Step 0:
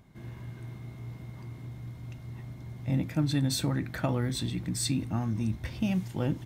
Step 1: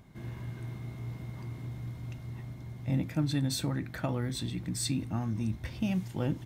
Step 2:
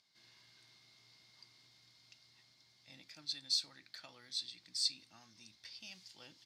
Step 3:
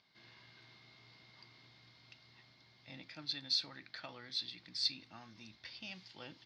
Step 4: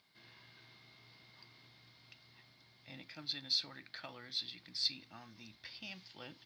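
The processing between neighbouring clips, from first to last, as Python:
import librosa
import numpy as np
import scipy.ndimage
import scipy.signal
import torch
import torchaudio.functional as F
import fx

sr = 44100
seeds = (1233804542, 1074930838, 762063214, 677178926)

y1 = fx.rider(x, sr, range_db=4, speed_s=2.0)
y1 = y1 * librosa.db_to_amplitude(-2.0)
y2 = fx.bandpass_q(y1, sr, hz=4700.0, q=5.2)
y2 = y2 * librosa.db_to_amplitude(7.5)
y3 = fx.air_absorb(y2, sr, metres=260.0)
y3 = y3 * librosa.db_to_amplitude(9.5)
y4 = fx.quant_companded(y3, sr, bits=8)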